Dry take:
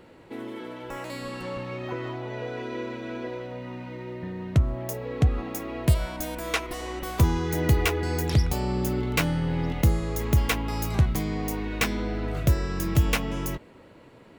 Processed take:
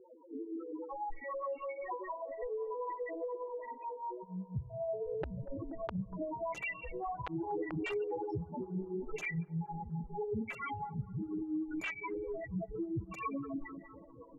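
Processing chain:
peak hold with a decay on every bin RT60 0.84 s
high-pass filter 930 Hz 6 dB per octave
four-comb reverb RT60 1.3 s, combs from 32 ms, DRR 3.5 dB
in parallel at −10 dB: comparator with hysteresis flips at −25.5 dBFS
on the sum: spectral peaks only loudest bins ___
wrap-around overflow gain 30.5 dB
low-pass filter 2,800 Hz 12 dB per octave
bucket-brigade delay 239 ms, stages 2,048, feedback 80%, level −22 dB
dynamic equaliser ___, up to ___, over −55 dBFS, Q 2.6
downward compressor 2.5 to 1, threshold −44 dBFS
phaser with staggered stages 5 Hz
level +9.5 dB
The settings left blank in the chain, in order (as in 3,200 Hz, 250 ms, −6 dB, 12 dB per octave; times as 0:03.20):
2, 1,800 Hz, −4 dB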